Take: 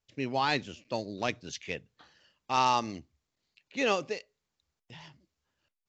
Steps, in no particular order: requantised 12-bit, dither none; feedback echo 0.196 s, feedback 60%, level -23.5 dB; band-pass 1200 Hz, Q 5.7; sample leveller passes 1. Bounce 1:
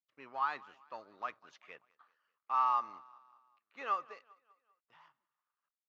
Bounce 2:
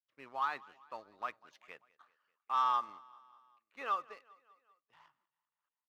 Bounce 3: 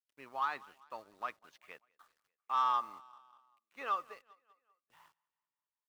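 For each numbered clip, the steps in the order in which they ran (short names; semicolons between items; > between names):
feedback echo > requantised > sample leveller > band-pass; requantised > band-pass > sample leveller > feedback echo; band-pass > requantised > feedback echo > sample leveller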